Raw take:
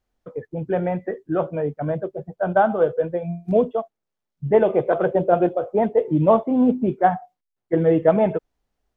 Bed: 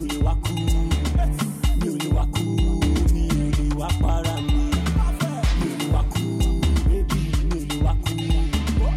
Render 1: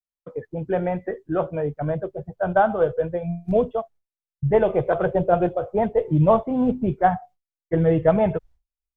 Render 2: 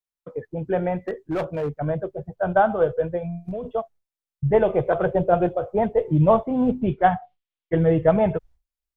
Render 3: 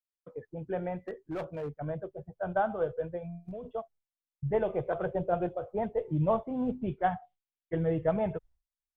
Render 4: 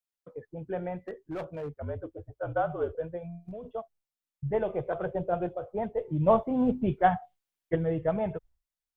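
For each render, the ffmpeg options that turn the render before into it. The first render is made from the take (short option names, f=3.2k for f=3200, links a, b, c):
-af "agate=range=-33dB:threshold=-41dB:ratio=3:detection=peak,asubboost=boost=8.5:cutoff=90"
-filter_complex "[0:a]asettb=1/sr,asplit=3[a][b][c];[a]atrim=end=1.014[d];[b]atrim=start=1.01:end=1.75,asetpts=PTS-STARTPTS,afade=t=in:d=0.004:c=qsin,afade=t=out:st=0.736:d=0.004:c=qsin,asoftclip=type=hard:threshold=-21dB[e];[c]atrim=start=1.746[f];[d][e]acrossfade=d=0.004:c1=hsin:c2=qsin[g];[g][f]acrossfade=d=0.004:c1=qsin:c2=hsin,asplit=3[h][i][j];[h]afade=t=out:st=3.24:d=0.02[k];[i]acompressor=threshold=-26dB:ratio=16:attack=3.2:release=140:knee=1:detection=peak,afade=t=in:st=3.24:d=0.02,afade=t=out:st=3.64:d=0.02[l];[j]afade=t=in:st=3.64:d=0.02[m];[k][l][m]amix=inputs=3:normalize=0,asettb=1/sr,asplit=3[n][o][p];[n]atrim=end=6.814[q];[o]atrim=start=6.81:end=7.78,asetpts=PTS-STARTPTS,afade=t=in:d=0.004:c=qsin,afade=t=out:st=0.966:d=0.004:c=qsin,lowpass=f=3.2k:t=q:w=2.6[r];[p]atrim=start=7.776[s];[q][r]acrossfade=d=0.004:c1=hsin:c2=qsin[t];[t][s]acrossfade=d=0.004:c1=qsin:c2=hsin"
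-af "volume=-10.5dB"
-filter_complex "[0:a]asettb=1/sr,asplit=3[a][b][c];[a]atrim=end=1.754[d];[b]atrim=start=1.75:end=2.95,asetpts=PTS-STARTPTS,afade=t=in:d=0.004:c=qsin,afade=t=out:st=1.196:d=0.004:c=qsin,afreqshift=-57[e];[c]atrim=start=2.946[f];[d][e]acrossfade=d=0.004:c1=hsin:c2=qsin[g];[g][f]acrossfade=d=0.004:c1=qsin:c2=hsin,asettb=1/sr,asplit=3[h][i][j];[h]atrim=end=6.264[k];[i]atrim=start=6.26:end=7.76,asetpts=PTS-STARTPTS,afade=t=in:d=0.004:c=qsin,afade=t=out:st=1.496:d=0.004:c=qsin,acontrast=44[l];[j]atrim=start=7.756[m];[k][l]acrossfade=d=0.004:c1=hsin:c2=qsin[n];[n][m]acrossfade=d=0.004:c1=qsin:c2=hsin"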